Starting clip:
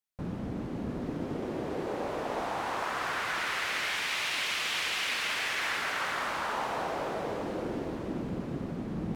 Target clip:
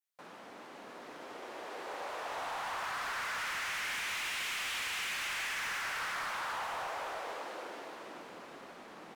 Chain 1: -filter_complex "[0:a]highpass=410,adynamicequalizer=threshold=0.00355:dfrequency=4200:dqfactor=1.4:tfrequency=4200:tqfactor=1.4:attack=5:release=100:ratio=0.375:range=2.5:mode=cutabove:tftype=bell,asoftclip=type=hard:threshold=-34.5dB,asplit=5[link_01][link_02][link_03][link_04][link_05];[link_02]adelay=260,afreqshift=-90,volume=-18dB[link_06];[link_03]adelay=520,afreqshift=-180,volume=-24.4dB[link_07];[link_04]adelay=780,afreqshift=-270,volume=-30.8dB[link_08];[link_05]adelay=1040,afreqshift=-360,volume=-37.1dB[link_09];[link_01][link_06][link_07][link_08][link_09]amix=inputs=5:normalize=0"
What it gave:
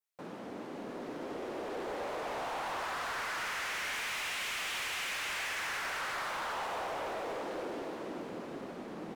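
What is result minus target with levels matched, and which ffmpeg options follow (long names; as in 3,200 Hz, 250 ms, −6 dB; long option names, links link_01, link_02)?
500 Hz band +6.0 dB
-filter_complex "[0:a]highpass=870,adynamicequalizer=threshold=0.00355:dfrequency=4200:dqfactor=1.4:tfrequency=4200:tqfactor=1.4:attack=5:release=100:ratio=0.375:range=2.5:mode=cutabove:tftype=bell,asoftclip=type=hard:threshold=-34.5dB,asplit=5[link_01][link_02][link_03][link_04][link_05];[link_02]adelay=260,afreqshift=-90,volume=-18dB[link_06];[link_03]adelay=520,afreqshift=-180,volume=-24.4dB[link_07];[link_04]adelay=780,afreqshift=-270,volume=-30.8dB[link_08];[link_05]adelay=1040,afreqshift=-360,volume=-37.1dB[link_09];[link_01][link_06][link_07][link_08][link_09]amix=inputs=5:normalize=0"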